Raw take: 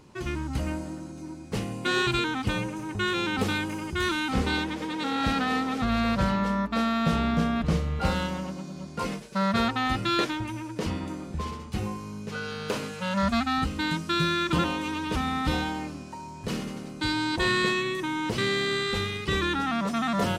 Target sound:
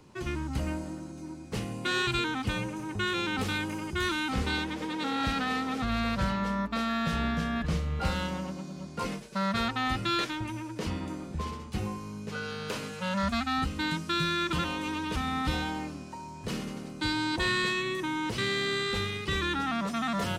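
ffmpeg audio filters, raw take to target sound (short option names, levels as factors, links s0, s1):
-filter_complex "[0:a]acrossover=split=130|1200|1900[s0][s1][s2][s3];[s1]alimiter=limit=0.0631:level=0:latency=1:release=262[s4];[s0][s4][s2][s3]amix=inputs=4:normalize=0,asettb=1/sr,asplit=3[s5][s6][s7];[s5]atrim=end=6.894[s8];[s6]atrim=start=6.89:end=7.66,asetpts=PTS-STARTPTS,afade=t=in:d=0.004:c=qsin,afade=t=out:st=0.766:d=0.004:c=qsin,aeval=exprs='val(0)+0.0112*sin(2*PI*1700*n/s)':c=same[s9];[s7]atrim=start=7.656[s10];[s8][s9]acrossfade=d=0.004:c1=hsin:c2=qsin[s11];[s11][s10]acrossfade=d=0.004:c1=qsin:c2=hsin,volume=0.794"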